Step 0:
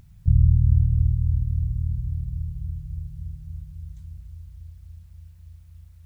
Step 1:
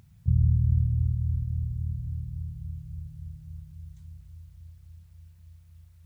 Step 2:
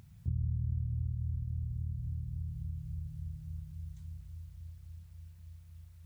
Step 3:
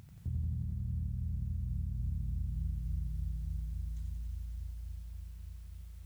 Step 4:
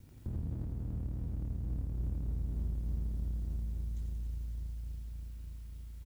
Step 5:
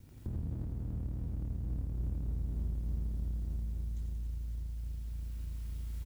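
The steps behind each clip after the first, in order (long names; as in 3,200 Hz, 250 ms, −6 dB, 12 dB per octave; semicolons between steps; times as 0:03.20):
high-pass filter 79 Hz; level −2.5 dB
downward compressor 2.5 to 1, threshold −36 dBFS, peak gain reduction 12.5 dB
brickwall limiter −31.5 dBFS, peak gain reduction 8 dB; feedback echo at a low word length 89 ms, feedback 80%, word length 12 bits, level −5.5 dB; level +2 dB
lower of the sound and its delayed copy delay 2.1 ms; double-tracking delay 19 ms −13 dB; convolution reverb, pre-delay 3 ms, DRR 18.5 dB
camcorder AGC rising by 9.6 dB per second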